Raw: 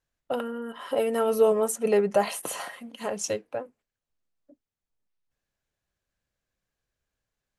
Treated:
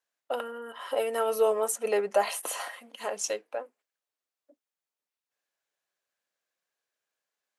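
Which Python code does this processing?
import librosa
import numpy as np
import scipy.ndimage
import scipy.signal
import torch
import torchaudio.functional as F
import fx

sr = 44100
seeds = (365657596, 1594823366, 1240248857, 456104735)

y = scipy.signal.sosfilt(scipy.signal.butter(2, 500.0, 'highpass', fs=sr, output='sos'), x)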